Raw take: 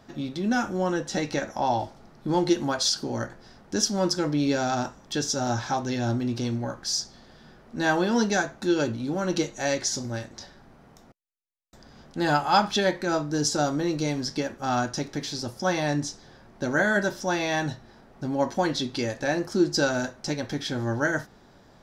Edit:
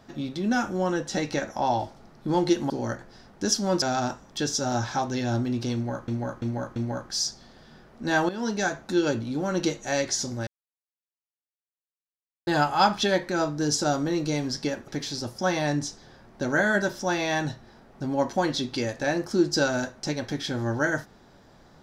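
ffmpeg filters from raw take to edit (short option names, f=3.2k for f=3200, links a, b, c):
-filter_complex "[0:a]asplit=10[a][b][c][d][e][f][g][h][i][j];[a]atrim=end=2.702[k];[b]atrim=start=3.008:end=4.132[l];[c]atrim=start=4.568:end=6.832[m];[d]atrim=start=6.488:end=6.832[n];[e]atrim=start=6.488:end=6.832[o];[f]atrim=start=6.488:end=8.02,asetpts=PTS-STARTPTS,afade=t=out:st=1.528:d=0.004:c=hsin:silence=0.251189[p];[g]atrim=start=8.02:end=10.2,asetpts=PTS-STARTPTS,afade=t=in:d=0.48:silence=0.251189,afade=t=out:st=2.176:d=0.004:c=hsin[q];[h]atrim=start=10.2:end=12.2,asetpts=PTS-STARTPTS,volume=0[r];[i]atrim=start=12.2:end=14.612,asetpts=PTS-STARTPTS,afade=t=in:d=0.004:c=hsin[s];[j]atrim=start=15.088[t];[k][l]acrossfade=d=0.004:c1=hsin:c2=hsin[u];[u][m]acrossfade=d=0.004:c1=hsin:c2=hsin[v];[v][n]acrossfade=d=0.004:c1=hsin:c2=hsin[w];[w][o]acrossfade=d=0.004:c1=hsin:c2=hsin[x];[p][q][r][s]concat=n=4:v=0:a=1[y];[x][y]acrossfade=d=0.004:c1=hsin:c2=hsin[z];[z][t]acrossfade=d=0.004:c1=hsin:c2=hsin"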